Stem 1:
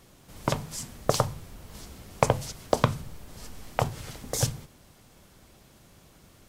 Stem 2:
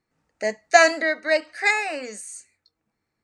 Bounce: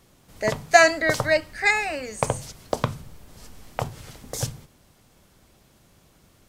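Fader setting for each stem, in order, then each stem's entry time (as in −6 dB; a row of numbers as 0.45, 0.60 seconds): −2.0, 0.0 decibels; 0.00, 0.00 seconds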